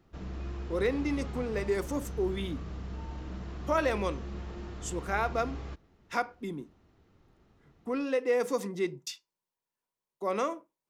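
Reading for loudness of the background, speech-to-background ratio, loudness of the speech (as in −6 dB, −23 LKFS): −41.0 LKFS, 8.5 dB, −32.5 LKFS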